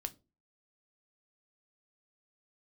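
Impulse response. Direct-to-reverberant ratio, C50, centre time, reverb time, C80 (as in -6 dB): 8.0 dB, 22.0 dB, 3 ms, 0.30 s, 29.0 dB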